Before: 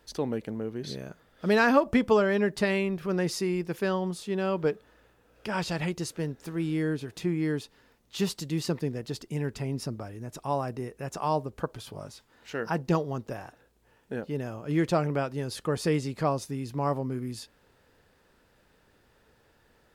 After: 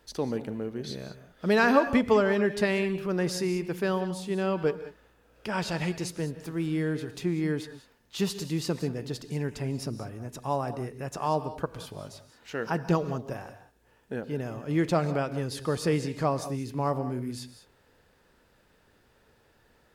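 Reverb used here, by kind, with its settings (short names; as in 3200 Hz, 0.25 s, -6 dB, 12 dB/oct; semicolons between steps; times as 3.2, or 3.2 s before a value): non-linear reverb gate 0.22 s rising, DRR 11.5 dB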